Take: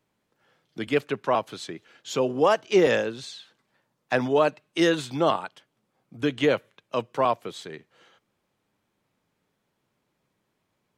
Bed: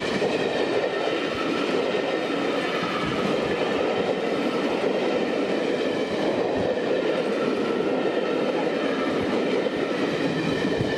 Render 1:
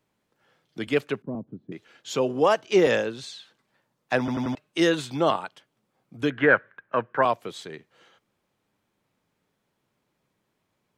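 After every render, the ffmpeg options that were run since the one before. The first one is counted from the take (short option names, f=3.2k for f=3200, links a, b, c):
-filter_complex "[0:a]asettb=1/sr,asplit=3[a][b][c];[a]atrim=end=1.224[d];[b]atrim=start=1.22:end=1.72,asetpts=PTS-STARTPTS,afade=t=in:d=0.004:c=qsin,afade=t=out:st=0.496:d=0.004:c=qsin,lowpass=f=230:t=q:w=2[e];[c]atrim=start=1.716[f];[d][e]acrossfade=d=0.004:c1=hsin:c2=qsin[g];[g][f]acrossfade=d=0.004:c1=qsin:c2=hsin,asettb=1/sr,asplit=3[h][i][j];[h]atrim=end=6.304[k];[i]atrim=start=6.3:end=7.23,asetpts=PTS-STARTPTS,afade=t=in:d=0.004:c=qsin,afade=t=out:st=0.926:d=0.004:c=qsin,lowpass=f=1.6k:t=q:w=7.5[l];[j]atrim=start=7.226[m];[k][l]acrossfade=d=0.004:c1=hsin:c2=qsin[n];[n][m]acrossfade=d=0.004:c1=qsin:c2=hsin,asplit=5[o][p][q][r][s];[o]atrim=end=4.282[t];[p]atrim=start=4.188:end=4.282[u];[q]atrim=start=4.188:end=4.282[v];[r]atrim=start=4.188:end=4.282[w];[s]atrim=start=4.548[x];[t][u]acrossfade=d=0.004:c1=hsin:c2=hsin[y];[y][v]acrossfade=d=0.004:c1=hsin:c2=hsin[z];[z][w]acrossfade=d=0.004:c1=hsin:c2=hsin[aa];[aa][x]acrossfade=d=0.004:c1=hsin:c2=hsin"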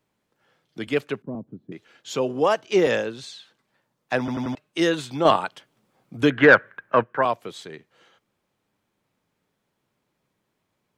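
-filter_complex "[0:a]asettb=1/sr,asplit=3[a][b][c];[a]atrim=end=5.254[d];[b]atrim=start=5.25:end=7.04,asetpts=PTS-STARTPTS,afade=t=in:d=0.004:c=qsin,afade=t=out:st=1.786:d=0.004:c=qsin,acontrast=74[e];[c]atrim=start=7.036[f];[d][e]acrossfade=d=0.004:c1=hsin:c2=qsin[g];[g][f]acrossfade=d=0.004:c1=qsin:c2=hsin"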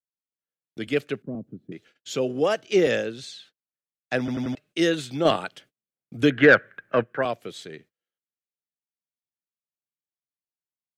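-af "agate=range=-35dB:threshold=-51dB:ratio=16:detection=peak,equalizer=f=970:w=2.5:g=-12.5"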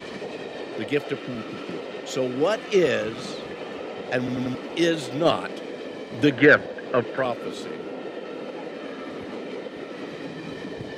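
-filter_complex "[1:a]volume=-10.5dB[a];[0:a][a]amix=inputs=2:normalize=0"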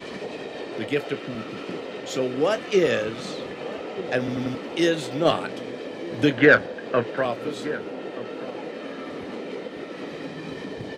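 -filter_complex "[0:a]asplit=2[a][b];[b]adelay=26,volume=-12.5dB[c];[a][c]amix=inputs=2:normalize=0,asplit=2[d][e];[e]adelay=1224,volume=-15dB,highshelf=f=4k:g=-27.6[f];[d][f]amix=inputs=2:normalize=0"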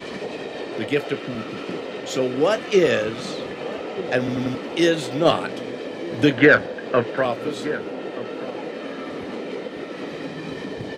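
-af "volume=3dB,alimiter=limit=-3dB:level=0:latency=1"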